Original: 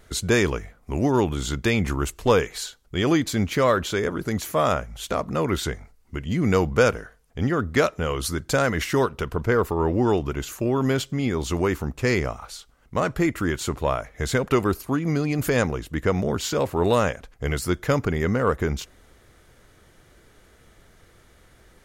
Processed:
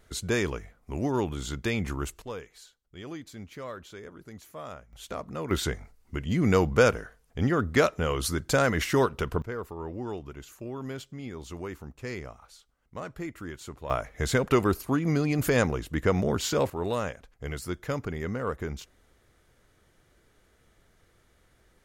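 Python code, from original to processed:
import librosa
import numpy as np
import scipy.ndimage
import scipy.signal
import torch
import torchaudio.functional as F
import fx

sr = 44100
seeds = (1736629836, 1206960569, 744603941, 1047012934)

y = fx.gain(x, sr, db=fx.steps((0.0, -7.0), (2.22, -19.5), (4.93, -10.5), (5.51, -2.0), (9.42, -14.5), (13.9, -2.0), (16.7, -9.5)))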